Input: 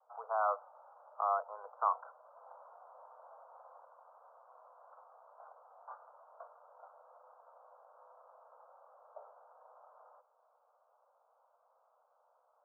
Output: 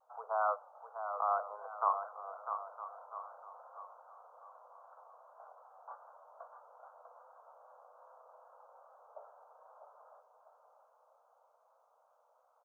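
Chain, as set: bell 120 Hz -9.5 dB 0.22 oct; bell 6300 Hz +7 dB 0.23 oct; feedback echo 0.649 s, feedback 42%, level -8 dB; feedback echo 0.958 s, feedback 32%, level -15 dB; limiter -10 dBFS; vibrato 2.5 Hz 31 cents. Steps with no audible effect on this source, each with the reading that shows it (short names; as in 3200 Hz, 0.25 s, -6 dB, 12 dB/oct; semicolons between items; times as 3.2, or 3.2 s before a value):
bell 120 Hz: input band starts at 400 Hz; bell 6300 Hz: input band ends at 1600 Hz; limiter -10 dBFS: input peak -16.5 dBFS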